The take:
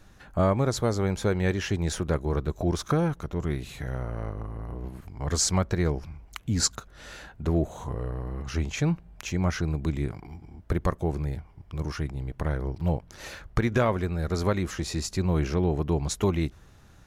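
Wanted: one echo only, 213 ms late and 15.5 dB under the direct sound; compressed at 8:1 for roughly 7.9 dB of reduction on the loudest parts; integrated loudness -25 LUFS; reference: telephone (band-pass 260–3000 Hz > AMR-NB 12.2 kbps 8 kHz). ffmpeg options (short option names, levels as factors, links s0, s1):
-af "acompressor=threshold=0.0447:ratio=8,highpass=260,lowpass=3000,aecho=1:1:213:0.168,volume=5.31" -ar 8000 -c:a libopencore_amrnb -b:a 12200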